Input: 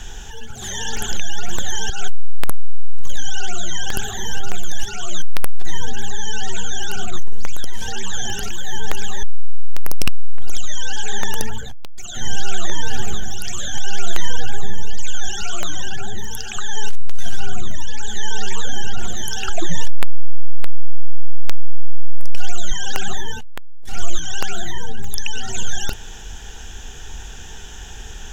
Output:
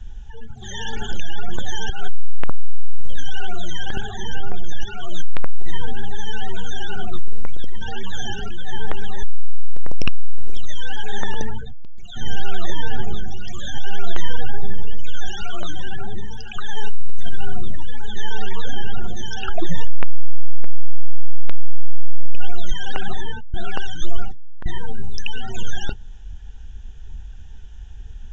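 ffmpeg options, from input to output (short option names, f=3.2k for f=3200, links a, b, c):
-filter_complex "[0:a]asplit=3[a][b][c];[a]atrim=end=23.542[d];[b]atrim=start=23.538:end=24.662,asetpts=PTS-STARTPTS,areverse[e];[c]atrim=start=24.658[f];[d][e]acrossfade=d=0.004:c1=hsin:c2=hsin[g];[g][f]acrossfade=d=0.004:c1=hsin:c2=hsin,lowpass=5k,afftdn=nr=18:nf=-29,adynamicequalizer=threshold=0.00251:dfrequency=2400:dqfactor=2.9:tfrequency=2400:tqfactor=2.9:attack=5:release=100:ratio=0.375:range=2.5:mode=cutabove:tftype=bell"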